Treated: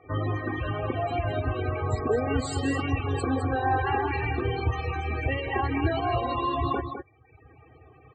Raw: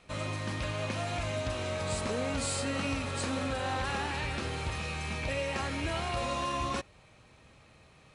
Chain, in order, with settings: high-pass 81 Hz 24 dB/octave; RIAA curve playback; reverb removal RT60 1.3 s; tone controls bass -9 dB, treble +5 dB; in parallel at -2.5 dB: volume shaper 150 bpm, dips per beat 2, -10 dB, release 73 ms; on the sum: comb 2.6 ms, depth 86%; loudest bins only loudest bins 32; on a send: delay 208 ms -8 dB; on the sum: trim +2 dB

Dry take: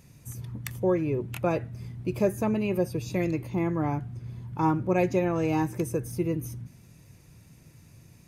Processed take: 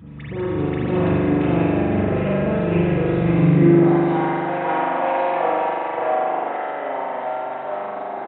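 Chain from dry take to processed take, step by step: hum notches 60/120 Hz; comb 6.2 ms, depth 62%; in parallel at 0 dB: compression, threshold -53 dBFS, peak gain reduction 32.5 dB; on the sum: phase dispersion highs, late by 77 ms, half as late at 860 Hz; saturation -21.5 dBFS, distortion -12 dB; on a send: reverse echo 532 ms -3.5 dB; on the sum: ever faster or slower copies 135 ms, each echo -4 st, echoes 2; high-pass sweep 61 Hz -> 700 Hz, 3.23–3.83 s; spring tank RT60 2.6 s, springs 41 ms, chirp 75 ms, DRR -8 dB; resampled via 8 kHz; trim -2.5 dB

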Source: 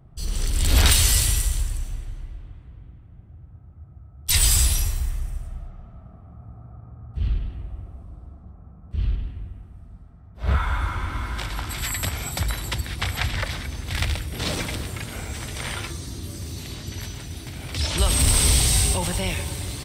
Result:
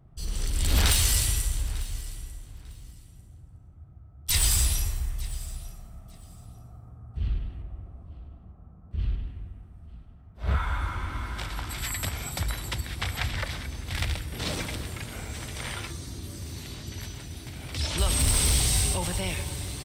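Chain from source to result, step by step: one-sided wavefolder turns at -11.5 dBFS; 7.62–8.99 s: treble shelf 4.1 kHz -7.5 dB; on a send: feedback delay 897 ms, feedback 20%, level -19 dB; on the sum: trim -4.5 dB

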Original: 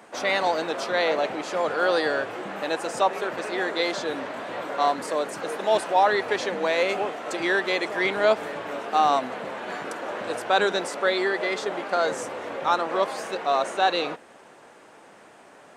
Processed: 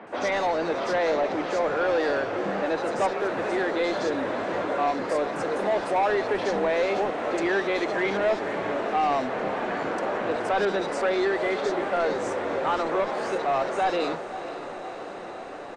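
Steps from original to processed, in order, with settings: bass shelf 390 Hz +7 dB; in parallel at 0 dB: compression, threshold -30 dBFS, peak gain reduction 16 dB; on the sum: saturation -17 dBFS, distortion -11 dB; on a send: echo that smears into a reverb 521 ms, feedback 79%, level -13 dB; 2.95–3.67 s: on the sum: crackle 470 per s -40 dBFS; distance through air 81 m; three bands offset in time mids, lows, highs 30/70 ms, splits 160/3600 Hz; trim -1.5 dB

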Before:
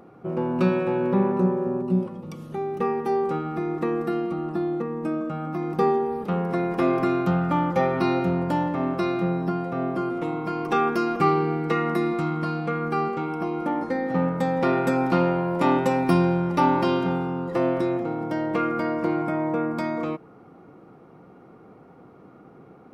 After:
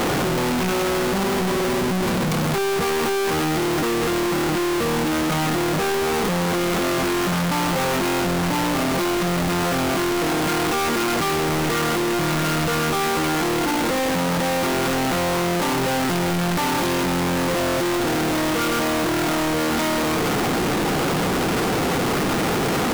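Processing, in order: one-bit comparator; trim +3.5 dB

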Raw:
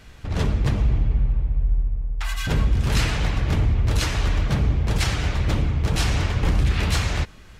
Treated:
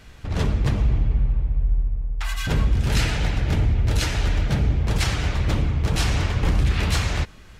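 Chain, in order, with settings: 2.79–4.81 s: band-stop 1.1 kHz, Q 6.8

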